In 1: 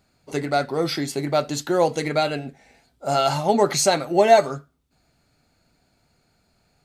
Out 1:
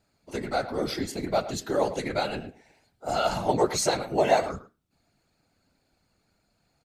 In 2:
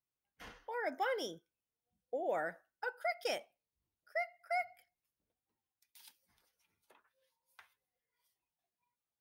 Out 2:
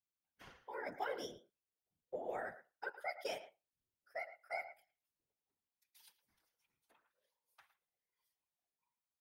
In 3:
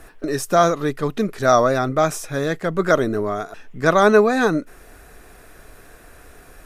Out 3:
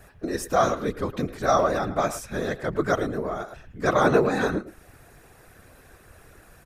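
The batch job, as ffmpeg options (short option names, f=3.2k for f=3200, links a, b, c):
-filter_complex "[0:a]afftfilt=real='hypot(re,im)*cos(2*PI*random(0))':imag='hypot(re,im)*sin(2*PI*random(1))':win_size=512:overlap=0.75,asplit=2[a][b];[b]adelay=110,highpass=300,lowpass=3.4k,asoftclip=type=hard:threshold=-14dB,volume=-13dB[c];[a][c]amix=inputs=2:normalize=0"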